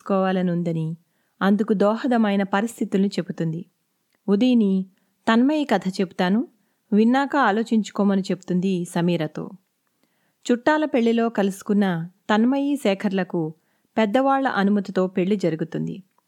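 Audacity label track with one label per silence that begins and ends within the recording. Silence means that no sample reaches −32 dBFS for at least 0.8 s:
9.510000	10.460000	silence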